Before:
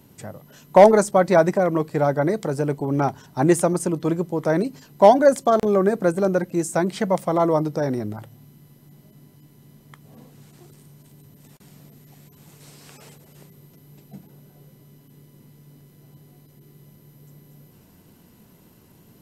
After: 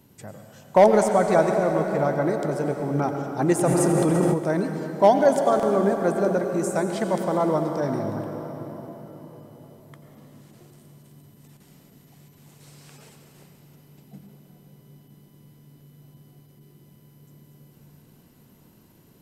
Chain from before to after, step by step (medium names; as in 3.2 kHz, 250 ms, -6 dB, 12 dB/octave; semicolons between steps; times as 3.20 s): on a send at -4 dB: reverberation RT60 4.4 s, pre-delay 84 ms; 3.65–4.34 s: on the sum: level flattener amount 100%; trim -4 dB